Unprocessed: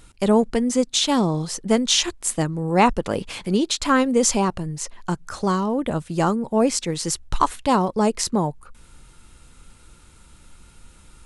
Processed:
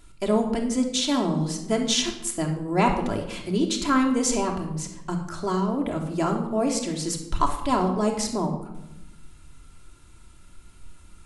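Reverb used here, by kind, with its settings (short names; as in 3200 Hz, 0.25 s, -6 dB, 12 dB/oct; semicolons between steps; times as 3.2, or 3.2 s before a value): shoebox room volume 2800 m³, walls furnished, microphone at 3 m; gain -6.5 dB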